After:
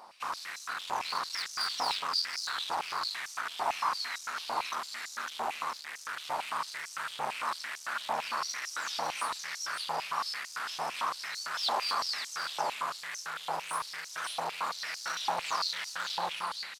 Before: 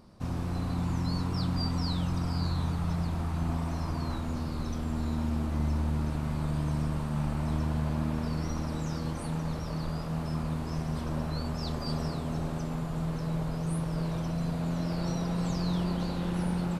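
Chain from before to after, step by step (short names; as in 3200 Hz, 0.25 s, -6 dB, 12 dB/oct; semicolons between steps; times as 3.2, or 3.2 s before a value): ending faded out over 0.79 s; on a send: echo 0.552 s -5 dB; on the sum: hard clip -30 dBFS, distortion -9 dB; stepped high-pass 8.9 Hz 830–5900 Hz; gain +6 dB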